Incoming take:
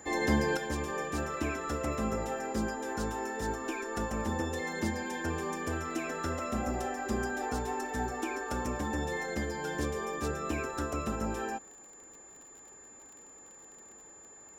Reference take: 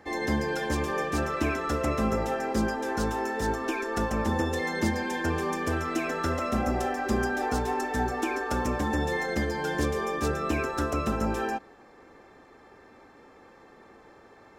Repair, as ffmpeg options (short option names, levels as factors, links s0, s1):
-af "adeclick=t=4,bandreject=f=7100:w=30,asetnsamples=n=441:p=0,asendcmd='0.57 volume volume 6dB',volume=1"